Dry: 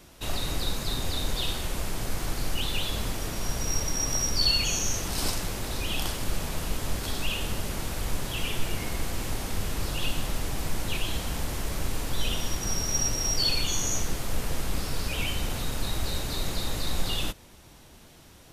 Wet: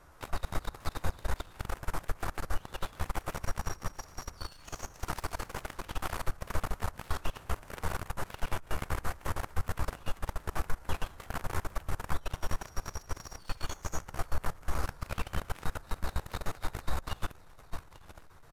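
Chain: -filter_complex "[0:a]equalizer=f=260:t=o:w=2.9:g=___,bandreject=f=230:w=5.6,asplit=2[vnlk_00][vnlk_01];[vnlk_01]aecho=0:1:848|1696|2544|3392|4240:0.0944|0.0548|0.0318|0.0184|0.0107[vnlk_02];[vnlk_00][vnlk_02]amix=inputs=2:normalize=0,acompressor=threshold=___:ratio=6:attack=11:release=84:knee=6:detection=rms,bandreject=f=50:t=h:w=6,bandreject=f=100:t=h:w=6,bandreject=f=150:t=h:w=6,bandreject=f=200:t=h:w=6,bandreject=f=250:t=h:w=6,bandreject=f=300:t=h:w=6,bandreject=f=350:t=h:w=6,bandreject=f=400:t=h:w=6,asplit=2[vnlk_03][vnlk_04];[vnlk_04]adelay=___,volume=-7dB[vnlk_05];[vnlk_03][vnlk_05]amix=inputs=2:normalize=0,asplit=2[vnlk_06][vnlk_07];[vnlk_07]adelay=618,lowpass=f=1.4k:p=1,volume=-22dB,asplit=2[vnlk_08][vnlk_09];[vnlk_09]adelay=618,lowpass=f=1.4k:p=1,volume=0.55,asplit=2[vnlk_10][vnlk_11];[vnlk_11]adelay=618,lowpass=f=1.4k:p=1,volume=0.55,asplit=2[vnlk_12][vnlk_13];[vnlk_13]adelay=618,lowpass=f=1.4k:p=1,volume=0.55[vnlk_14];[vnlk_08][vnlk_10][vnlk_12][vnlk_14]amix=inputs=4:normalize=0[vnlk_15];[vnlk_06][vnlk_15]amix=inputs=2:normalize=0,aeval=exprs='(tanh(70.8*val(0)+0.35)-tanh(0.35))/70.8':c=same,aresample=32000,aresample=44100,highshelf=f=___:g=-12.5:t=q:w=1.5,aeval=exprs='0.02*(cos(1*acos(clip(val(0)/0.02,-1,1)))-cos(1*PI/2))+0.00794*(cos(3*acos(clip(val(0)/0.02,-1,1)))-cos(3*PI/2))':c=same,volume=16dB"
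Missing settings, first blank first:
-8, -39dB, 13, 2k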